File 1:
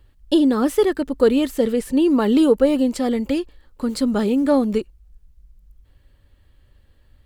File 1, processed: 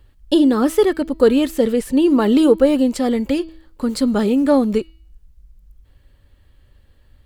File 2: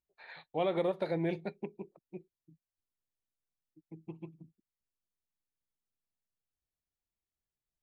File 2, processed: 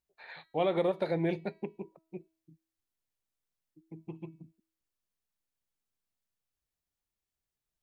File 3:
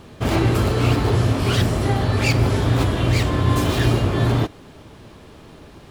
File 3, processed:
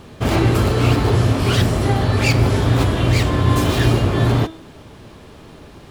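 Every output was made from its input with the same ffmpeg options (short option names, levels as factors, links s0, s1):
-af "bandreject=f=323.1:t=h:w=4,bandreject=f=646.2:t=h:w=4,bandreject=f=969.3:t=h:w=4,bandreject=f=1292.4:t=h:w=4,bandreject=f=1615.5:t=h:w=4,bandreject=f=1938.6:t=h:w=4,bandreject=f=2261.7:t=h:w=4,bandreject=f=2584.8:t=h:w=4,bandreject=f=2907.9:t=h:w=4,bandreject=f=3231:t=h:w=4,bandreject=f=3554.1:t=h:w=4,bandreject=f=3877.2:t=h:w=4,bandreject=f=4200.3:t=h:w=4,bandreject=f=4523.4:t=h:w=4,bandreject=f=4846.5:t=h:w=4,volume=1.33"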